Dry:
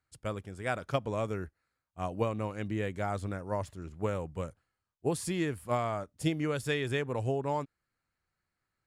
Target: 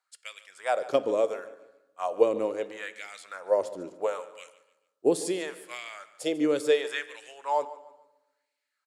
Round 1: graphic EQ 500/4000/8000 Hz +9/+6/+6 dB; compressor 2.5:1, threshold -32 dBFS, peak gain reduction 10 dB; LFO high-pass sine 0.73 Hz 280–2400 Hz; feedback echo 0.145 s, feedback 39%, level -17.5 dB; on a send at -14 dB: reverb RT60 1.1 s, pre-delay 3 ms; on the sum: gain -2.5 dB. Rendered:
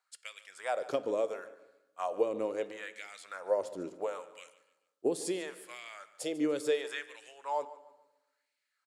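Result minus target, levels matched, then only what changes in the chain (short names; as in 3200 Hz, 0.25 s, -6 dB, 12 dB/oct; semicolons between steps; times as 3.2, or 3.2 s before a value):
compressor: peak gain reduction +10 dB
remove: compressor 2.5:1, threshold -32 dBFS, peak gain reduction 10 dB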